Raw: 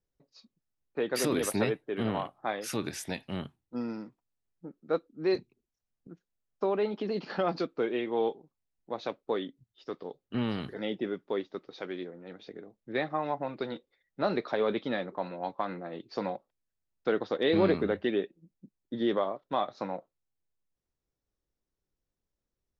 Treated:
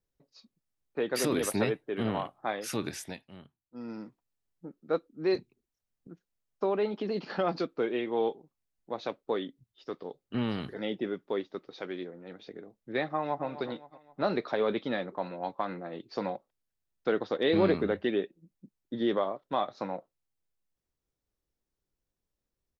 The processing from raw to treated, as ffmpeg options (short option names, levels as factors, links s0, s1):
-filter_complex "[0:a]asplit=2[s0][s1];[s1]afade=t=in:st=13.05:d=0.01,afade=t=out:st=13.45:d=0.01,aecho=0:1:260|520|780|1040:0.223872|0.100742|0.0453341|0.0204003[s2];[s0][s2]amix=inputs=2:normalize=0,asplit=3[s3][s4][s5];[s3]atrim=end=3.26,asetpts=PTS-STARTPTS,afade=t=out:st=2.92:d=0.34:silence=0.199526[s6];[s4]atrim=start=3.26:end=3.71,asetpts=PTS-STARTPTS,volume=0.2[s7];[s5]atrim=start=3.71,asetpts=PTS-STARTPTS,afade=t=in:d=0.34:silence=0.199526[s8];[s6][s7][s8]concat=n=3:v=0:a=1"